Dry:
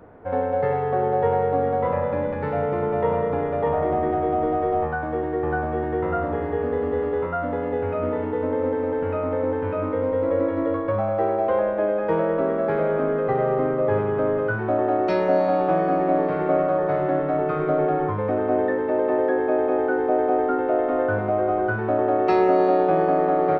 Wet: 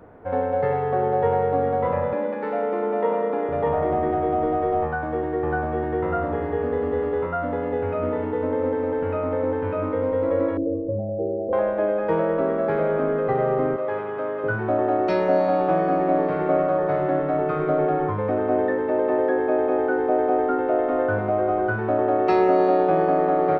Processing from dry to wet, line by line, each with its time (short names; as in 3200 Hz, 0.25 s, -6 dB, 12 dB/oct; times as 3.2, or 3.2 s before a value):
2.13–3.49 elliptic high-pass 200 Hz
10.57–11.53 steep low-pass 550 Hz
13.76–14.44 HPF 770 Hz 6 dB/oct